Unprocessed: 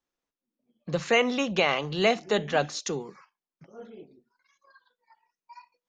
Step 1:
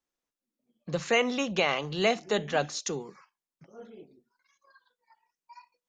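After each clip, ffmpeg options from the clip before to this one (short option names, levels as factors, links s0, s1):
-af "equalizer=f=7200:w=1.3:g=3.5,volume=0.75"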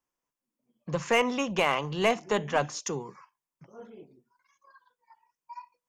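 -af "aeval=exprs='0.251*(cos(1*acos(clip(val(0)/0.251,-1,1)))-cos(1*PI/2))+0.0224*(cos(6*acos(clip(val(0)/0.251,-1,1)))-cos(6*PI/2))+0.0141*(cos(8*acos(clip(val(0)/0.251,-1,1)))-cos(8*PI/2))':c=same,equalizer=f=125:t=o:w=0.33:g=8,equalizer=f=1000:t=o:w=0.33:g=9,equalizer=f=4000:t=o:w=0.33:g=-10"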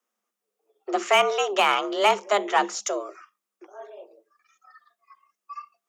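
-af "afreqshift=200,volume=1.78"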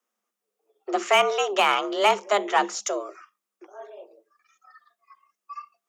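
-af anull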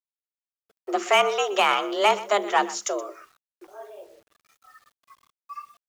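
-af "aecho=1:1:124:0.133,acrusher=bits=9:mix=0:aa=0.000001"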